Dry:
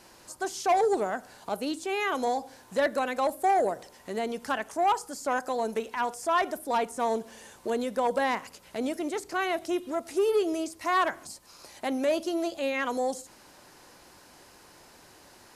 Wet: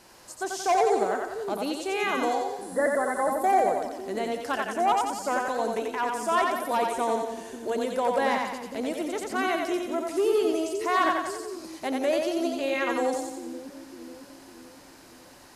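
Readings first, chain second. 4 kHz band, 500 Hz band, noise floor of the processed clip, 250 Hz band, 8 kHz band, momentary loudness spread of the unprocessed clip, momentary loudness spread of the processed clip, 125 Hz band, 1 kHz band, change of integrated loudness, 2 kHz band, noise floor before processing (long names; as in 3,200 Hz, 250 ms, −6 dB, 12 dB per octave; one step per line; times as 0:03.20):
+2.0 dB, +2.5 dB, −51 dBFS, +2.5 dB, +2.5 dB, 11 LU, 12 LU, can't be measured, +2.5 dB, +2.0 dB, +2.0 dB, −55 dBFS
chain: healed spectral selection 0:02.64–0:03.28, 2,100–11,000 Hz after
echo with a time of its own for lows and highs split 370 Hz, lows 552 ms, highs 89 ms, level −3 dB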